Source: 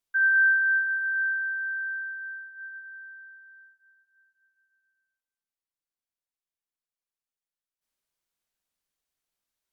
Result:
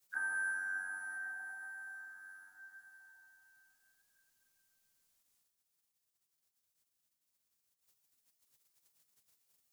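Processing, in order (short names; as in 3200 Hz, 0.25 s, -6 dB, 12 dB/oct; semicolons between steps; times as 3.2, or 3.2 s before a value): spectral gate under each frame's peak -10 dB weak; tone controls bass +5 dB, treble +8 dB; gain +10.5 dB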